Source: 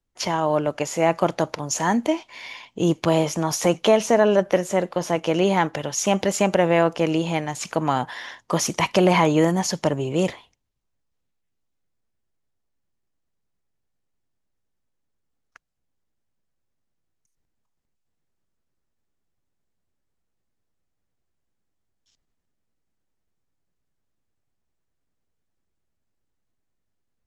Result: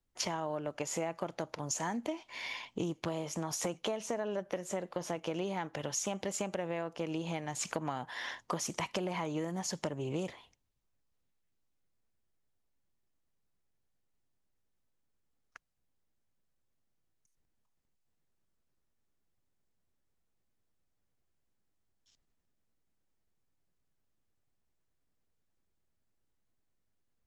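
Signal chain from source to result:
dynamic equaliser 7,800 Hz, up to +5 dB, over −42 dBFS, Q 2.5
downward compressor 12 to 1, threshold −29 dBFS, peak gain reduction 18 dB
highs frequency-modulated by the lows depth 0.1 ms
level −3 dB

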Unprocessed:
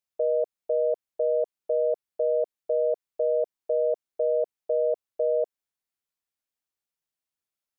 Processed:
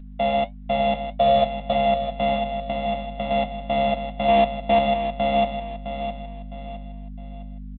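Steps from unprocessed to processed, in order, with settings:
samples sorted by size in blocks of 64 samples
0:01.06–0:01.73: comb filter 1.7 ms, depth 98%
0:02.35–0:03.31: downward compressor 8 to 1, threshold −26 dBFS, peak gain reduction 5.5 dB
0:04.28–0:04.79: leveller curve on the samples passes 5
flanger 1.6 Hz, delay 8.1 ms, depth 2.8 ms, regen −62%
mains hum 50 Hz, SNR 13 dB
phaser with its sweep stopped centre 390 Hz, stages 6
repeating echo 660 ms, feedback 36%, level −9 dB
level +8.5 dB
G.726 40 kbit/s 8,000 Hz

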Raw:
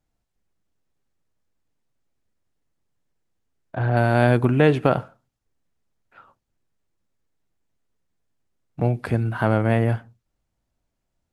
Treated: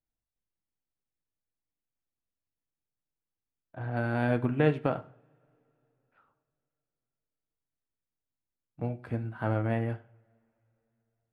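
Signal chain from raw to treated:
bass and treble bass +1 dB, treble −7 dB
on a send at −7 dB: convolution reverb, pre-delay 3 ms
on the sum: expander for the loud parts 1.5 to 1, over −29 dBFS
level −8.5 dB

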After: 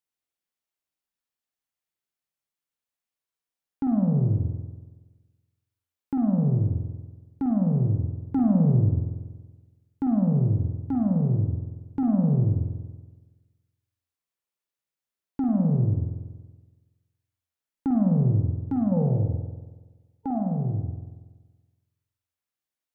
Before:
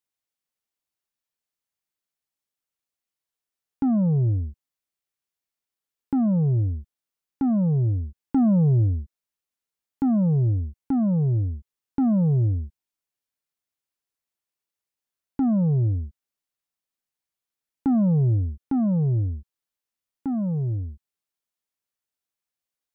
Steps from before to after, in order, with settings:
gain on a spectral selection 0:18.92–0:20.39, 440–910 Hz +11 dB
spring reverb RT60 1.3 s, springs 47 ms, chirp 50 ms, DRR 2 dB
level −3.5 dB

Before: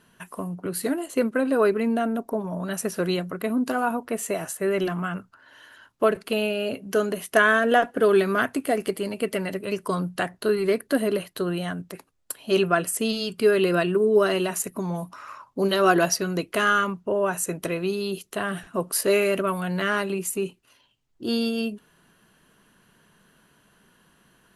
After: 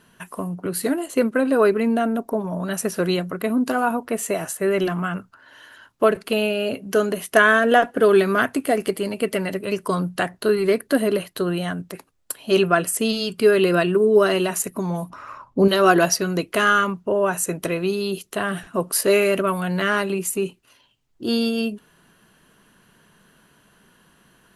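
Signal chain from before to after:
0:15.10–0:15.68: spectral tilt −2.5 dB per octave
level +3.5 dB

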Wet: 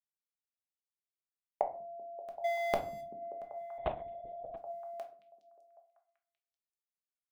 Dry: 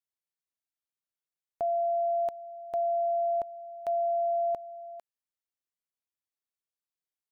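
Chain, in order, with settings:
0:02.44–0:03.01: mu-law and A-law mismatch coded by mu
notch filter 910 Hz, Q 6.3
downward expander −36 dBFS
low-shelf EQ 210 Hz −4.5 dB
gate with flip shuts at −33 dBFS, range −26 dB
on a send: echo through a band-pass that steps 193 ms, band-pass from 160 Hz, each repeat 0.7 octaves, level −8 dB
on the sum: rectangular room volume 310 cubic metres, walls furnished, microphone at 1.3 metres
0:03.78–0:04.57: linear-prediction vocoder at 8 kHz whisper
level +17.5 dB

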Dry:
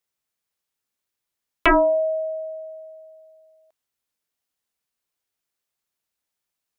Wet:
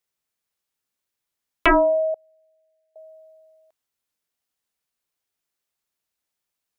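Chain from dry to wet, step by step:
0:02.14–0:02.96: four-pole ladder high-pass 1,400 Hz, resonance 35%

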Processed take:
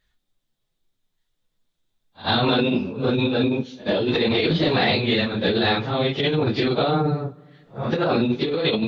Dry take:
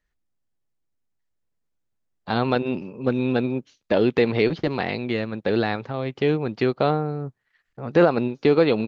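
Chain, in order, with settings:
random phases in long frames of 100 ms
parametric band 3,600 Hz +12.5 dB 0.44 octaves
brickwall limiter −16 dBFS, peak gain reduction 11.5 dB
compressor whose output falls as the input rises −25 dBFS, ratio −0.5
backwards echo 88 ms −21 dB
on a send at −21 dB: convolution reverb RT60 1.8 s, pre-delay 3 ms
on the sum: level +5.5 dB

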